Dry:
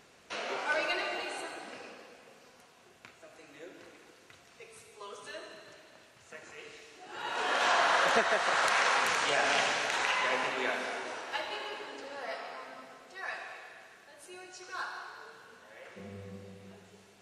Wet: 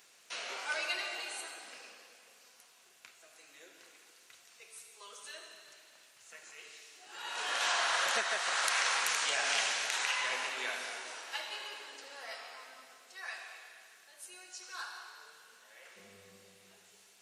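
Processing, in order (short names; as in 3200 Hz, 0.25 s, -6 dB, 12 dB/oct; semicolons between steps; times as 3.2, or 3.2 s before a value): tilt +4 dB/oct; gain -7 dB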